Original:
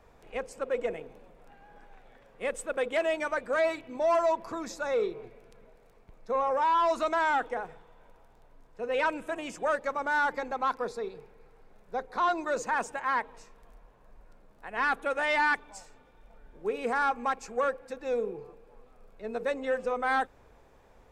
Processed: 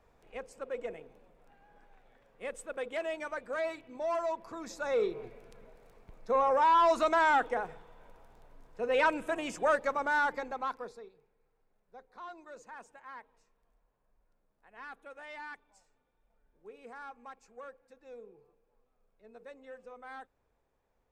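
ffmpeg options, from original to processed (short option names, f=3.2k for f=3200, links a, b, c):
-af "volume=1dB,afade=t=in:st=4.52:d=0.73:silence=0.375837,afade=t=out:st=9.76:d=0.87:silence=0.446684,afade=t=out:st=10.63:d=0.5:silence=0.223872"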